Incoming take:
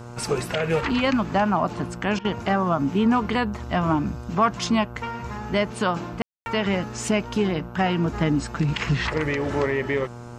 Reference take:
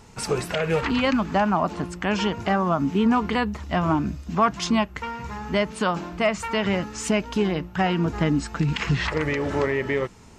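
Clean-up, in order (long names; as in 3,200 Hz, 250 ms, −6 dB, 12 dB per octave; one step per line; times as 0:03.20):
hum removal 119.8 Hz, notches 13
ambience match 0:06.22–0:06.46
repair the gap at 0:02.19, 56 ms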